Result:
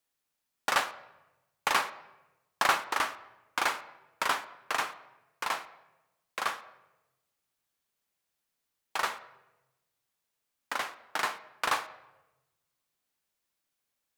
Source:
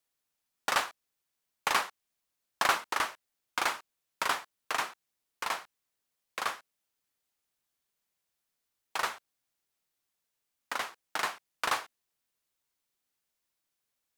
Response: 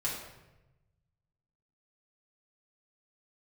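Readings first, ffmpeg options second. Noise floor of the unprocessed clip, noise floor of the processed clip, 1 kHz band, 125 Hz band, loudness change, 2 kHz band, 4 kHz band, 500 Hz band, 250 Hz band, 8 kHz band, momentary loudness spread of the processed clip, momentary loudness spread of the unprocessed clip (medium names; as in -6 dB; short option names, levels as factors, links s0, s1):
-84 dBFS, -84 dBFS, +1.5 dB, +1.0 dB, +1.0 dB, +1.5 dB, +0.5 dB, +1.5 dB, +1.5 dB, 0.0 dB, 15 LU, 10 LU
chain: -filter_complex "[0:a]asplit=2[s0][s1];[s1]highpass=94[s2];[1:a]atrim=start_sample=2205,lowpass=4200[s3];[s2][s3]afir=irnorm=-1:irlink=0,volume=0.2[s4];[s0][s4]amix=inputs=2:normalize=0"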